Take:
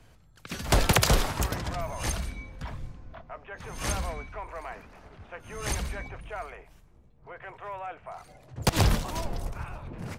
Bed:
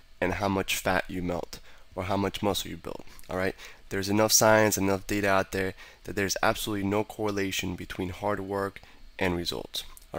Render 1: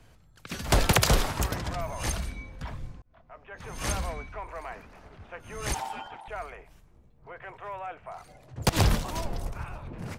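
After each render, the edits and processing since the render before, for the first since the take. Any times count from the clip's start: 3.02–3.69 s: fade in; 5.74–6.28 s: ring modulator 840 Hz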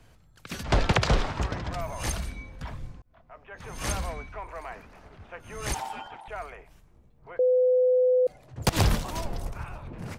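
0.63–1.73 s: distance through air 130 m; 7.39–8.27 s: bleep 505 Hz -18 dBFS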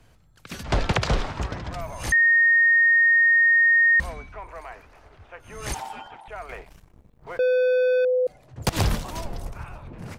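2.12–4.00 s: bleep 1.85 kHz -14 dBFS; 4.61–5.48 s: peaking EQ 200 Hz -10.5 dB; 6.49–8.05 s: waveshaping leveller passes 2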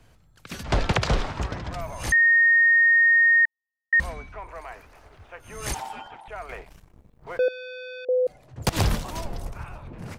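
3.45–3.93 s: rippled Chebyshev low-pass 920 Hz, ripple 9 dB; 4.68–5.71 s: treble shelf 7.7 kHz +8 dB; 7.48–8.09 s: band-pass filter 3.7 kHz, Q 1.3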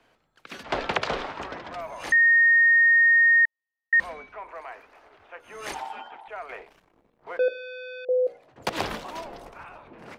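three-band isolator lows -21 dB, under 250 Hz, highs -12 dB, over 4.2 kHz; hum notches 60/120/180/240/300/360/420/480/540/600 Hz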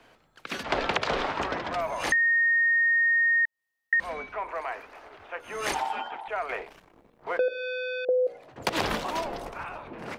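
in parallel at +0.5 dB: peak limiter -20.5 dBFS, peak gain reduction 9.5 dB; on the sum: compression 4:1, threshold -23 dBFS, peak gain reduction 8.5 dB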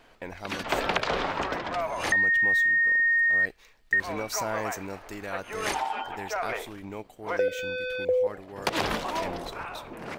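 add bed -11.5 dB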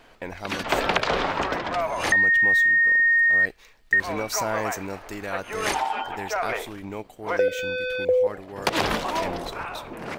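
trim +4 dB

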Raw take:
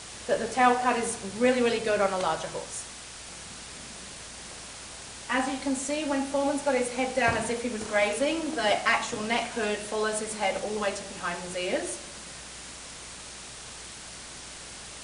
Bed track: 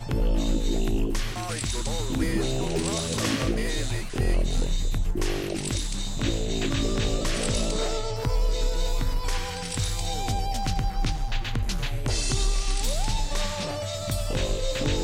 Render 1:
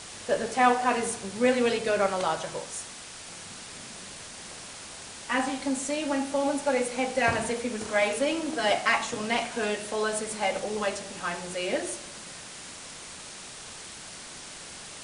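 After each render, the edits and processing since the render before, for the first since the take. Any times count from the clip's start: de-hum 60 Hz, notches 2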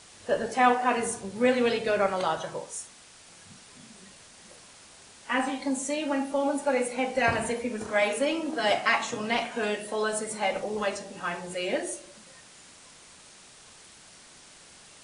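noise print and reduce 9 dB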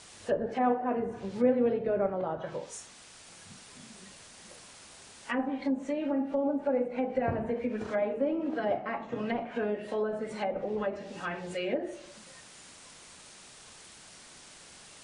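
low-pass that closes with the level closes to 820 Hz, closed at -24 dBFS; dynamic bell 1 kHz, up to -6 dB, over -44 dBFS, Q 1.3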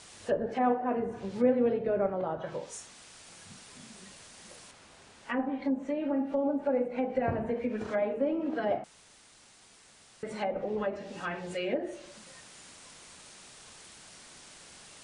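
4.71–6.13 s: treble shelf 4.2 kHz -10.5 dB; 8.84–10.23 s: room tone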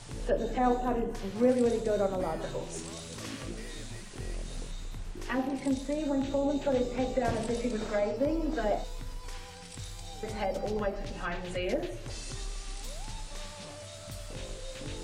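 add bed track -14.5 dB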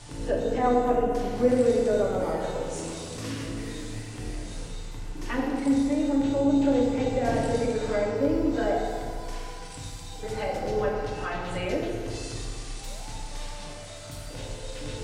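FDN reverb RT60 2.1 s, low-frequency decay 1×, high-frequency decay 0.55×, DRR -2 dB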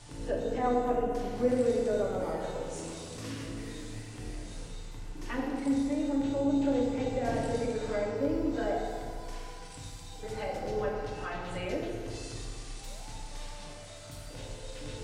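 trim -5.5 dB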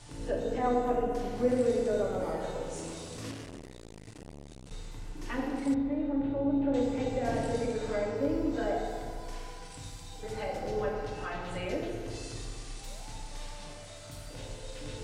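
3.31–4.71 s: transformer saturation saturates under 540 Hz; 5.74–6.74 s: distance through air 490 m

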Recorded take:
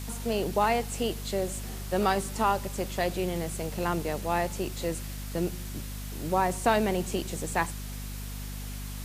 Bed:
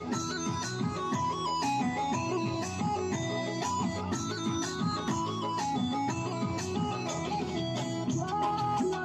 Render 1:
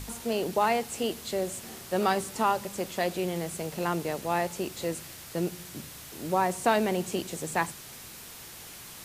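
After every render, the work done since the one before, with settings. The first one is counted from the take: de-hum 50 Hz, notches 5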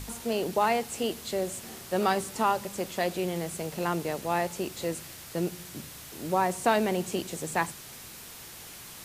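no audible change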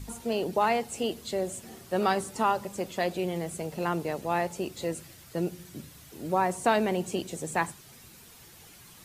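noise reduction 9 dB, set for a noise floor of -45 dBFS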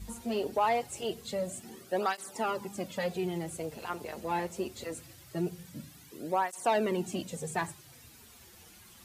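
saturation -17 dBFS, distortion -18 dB; cancelling through-zero flanger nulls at 0.23 Hz, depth 7.5 ms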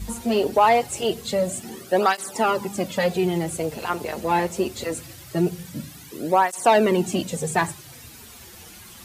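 trim +11 dB

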